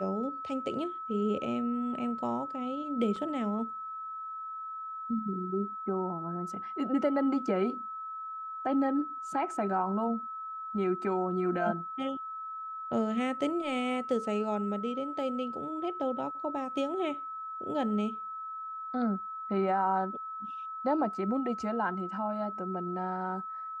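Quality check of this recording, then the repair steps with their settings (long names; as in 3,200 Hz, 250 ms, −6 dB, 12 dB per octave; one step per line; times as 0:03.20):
whistle 1,300 Hz −37 dBFS
0:03.16: drop-out 3.8 ms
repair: notch filter 1,300 Hz, Q 30
repair the gap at 0:03.16, 3.8 ms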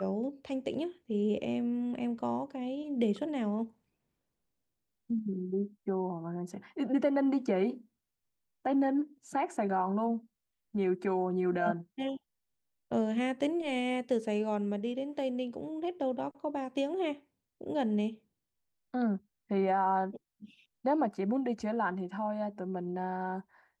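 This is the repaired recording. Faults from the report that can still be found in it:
none of them is left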